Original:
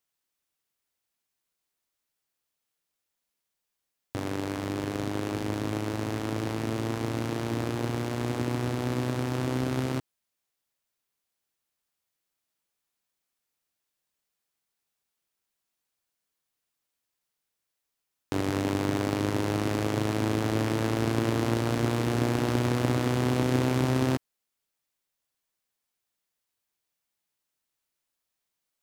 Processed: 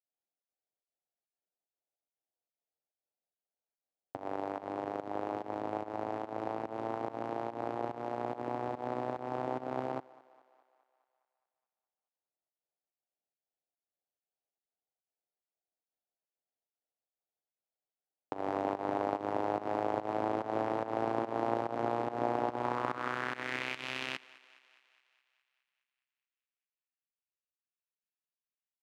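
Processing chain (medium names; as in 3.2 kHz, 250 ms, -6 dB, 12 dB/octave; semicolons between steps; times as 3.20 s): local Wiener filter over 41 samples; volume shaper 144 bpm, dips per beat 1, -17 dB, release 170 ms; band-pass sweep 760 Hz -> 2.6 kHz, 22.50–23.79 s; on a send: thinning echo 208 ms, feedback 63%, high-pass 350 Hz, level -20.5 dB; on the sum: trim +5.5 dB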